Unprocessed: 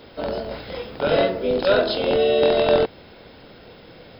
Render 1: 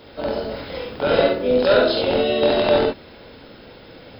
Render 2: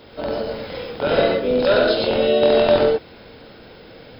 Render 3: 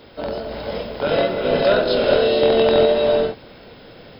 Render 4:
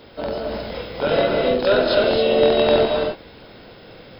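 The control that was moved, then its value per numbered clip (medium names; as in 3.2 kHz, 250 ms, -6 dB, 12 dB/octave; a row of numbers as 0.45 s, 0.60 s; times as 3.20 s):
gated-style reverb, gate: 90 ms, 140 ms, 500 ms, 310 ms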